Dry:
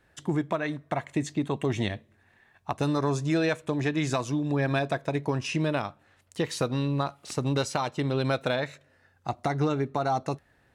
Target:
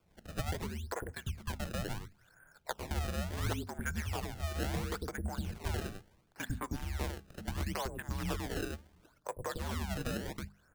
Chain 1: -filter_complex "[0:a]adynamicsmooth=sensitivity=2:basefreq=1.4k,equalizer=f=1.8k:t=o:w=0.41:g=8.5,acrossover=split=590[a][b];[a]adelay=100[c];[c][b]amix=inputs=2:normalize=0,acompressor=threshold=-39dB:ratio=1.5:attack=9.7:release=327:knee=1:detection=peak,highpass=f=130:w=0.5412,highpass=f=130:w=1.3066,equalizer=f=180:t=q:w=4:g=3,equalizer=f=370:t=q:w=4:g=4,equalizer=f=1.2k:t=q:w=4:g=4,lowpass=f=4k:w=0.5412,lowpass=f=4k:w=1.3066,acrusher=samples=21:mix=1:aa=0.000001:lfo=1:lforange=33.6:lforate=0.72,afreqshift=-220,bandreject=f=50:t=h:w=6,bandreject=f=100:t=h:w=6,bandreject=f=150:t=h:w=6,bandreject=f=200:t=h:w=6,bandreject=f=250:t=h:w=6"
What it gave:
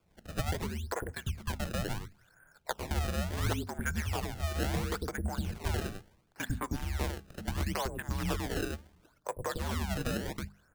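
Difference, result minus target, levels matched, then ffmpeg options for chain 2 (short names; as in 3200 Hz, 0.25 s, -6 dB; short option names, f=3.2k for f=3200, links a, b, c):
compressor: peak gain reduction -3.5 dB
-filter_complex "[0:a]adynamicsmooth=sensitivity=2:basefreq=1.4k,equalizer=f=1.8k:t=o:w=0.41:g=8.5,acrossover=split=590[a][b];[a]adelay=100[c];[c][b]amix=inputs=2:normalize=0,acompressor=threshold=-49dB:ratio=1.5:attack=9.7:release=327:knee=1:detection=peak,highpass=f=130:w=0.5412,highpass=f=130:w=1.3066,equalizer=f=180:t=q:w=4:g=3,equalizer=f=370:t=q:w=4:g=4,equalizer=f=1.2k:t=q:w=4:g=4,lowpass=f=4k:w=0.5412,lowpass=f=4k:w=1.3066,acrusher=samples=21:mix=1:aa=0.000001:lfo=1:lforange=33.6:lforate=0.72,afreqshift=-220,bandreject=f=50:t=h:w=6,bandreject=f=100:t=h:w=6,bandreject=f=150:t=h:w=6,bandreject=f=200:t=h:w=6,bandreject=f=250:t=h:w=6"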